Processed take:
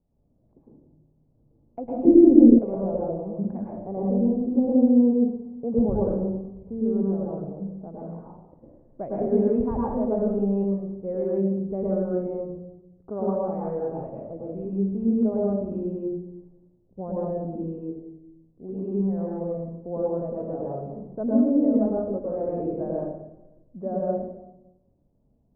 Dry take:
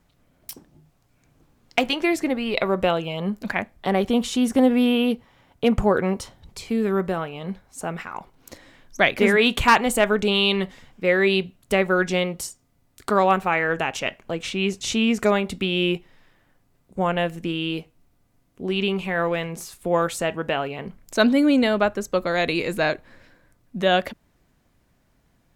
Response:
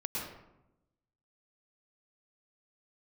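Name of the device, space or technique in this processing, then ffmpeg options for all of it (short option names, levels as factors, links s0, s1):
next room: -filter_complex "[0:a]lowpass=f=670:w=0.5412,lowpass=f=670:w=1.3066[s0];[1:a]atrim=start_sample=2205[s1];[s0][s1]afir=irnorm=-1:irlink=0,asettb=1/sr,asplit=3[s2][s3][s4];[s2]atrim=end=2.054[s5];[s3]atrim=start=2.05:end=2.59,asetpts=PTS-STARTPTS,afade=t=in:d=0.004:c=qsin,afade=t=out:st=0.536:d=0.004:c=qsin,lowshelf=f=500:t=q:w=1.5:g=12[s6];[s4]atrim=start=2.586[s7];[s5][s6]acrossfade=d=0.004:c1=hsin:c2=qsin[s8];[s8][s7]acrossfade=d=0.004:c1=qsin:c2=hsin,volume=0.422"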